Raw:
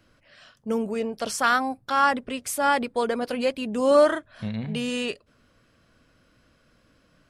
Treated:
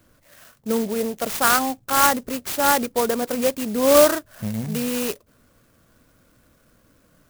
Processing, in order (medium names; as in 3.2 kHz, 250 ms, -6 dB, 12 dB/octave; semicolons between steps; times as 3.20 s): sampling jitter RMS 0.085 ms; trim +3.5 dB